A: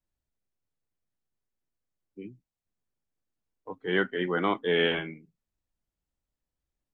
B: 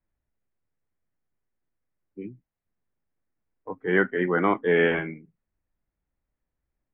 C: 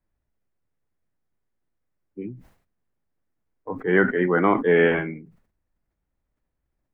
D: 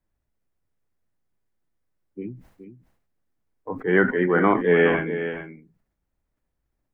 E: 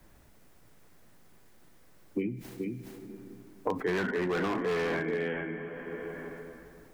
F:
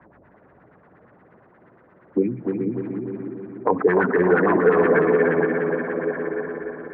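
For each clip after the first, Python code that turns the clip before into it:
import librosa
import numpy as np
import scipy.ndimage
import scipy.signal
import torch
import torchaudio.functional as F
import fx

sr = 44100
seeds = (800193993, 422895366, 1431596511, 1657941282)

y1 = scipy.signal.sosfilt(scipy.signal.cheby1(3, 1.0, 2100.0, 'lowpass', fs=sr, output='sos'), x)
y1 = y1 * librosa.db_to_amplitude(5.0)
y2 = fx.high_shelf(y1, sr, hz=3200.0, db=-8.0)
y2 = fx.sustainer(y2, sr, db_per_s=110.0)
y2 = y2 * librosa.db_to_amplitude(3.5)
y3 = y2 + 10.0 ** (-10.5 / 20.0) * np.pad(y2, (int(420 * sr / 1000.0), 0))[:len(y2)]
y4 = fx.rev_plate(y3, sr, seeds[0], rt60_s=2.3, hf_ratio=0.8, predelay_ms=0, drr_db=15.0)
y4 = np.clip(y4, -10.0 ** (-19.5 / 20.0), 10.0 ** (-19.5 / 20.0))
y4 = fx.band_squash(y4, sr, depth_pct=100)
y4 = y4 * librosa.db_to_amplitude(-6.5)
y5 = fx.filter_lfo_lowpass(y4, sr, shape='sine', hz=8.5, low_hz=460.0, high_hz=1800.0, q=2.5)
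y5 = fx.bandpass_edges(y5, sr, low_hz=110.0, high_hz=2400.0)
y5 = fx.echo_feedback(y5, sr, ms=296, feedback_pct=58, wet_db=-5)
y5 = y5 * librosa.db_to_amplitude(8.5)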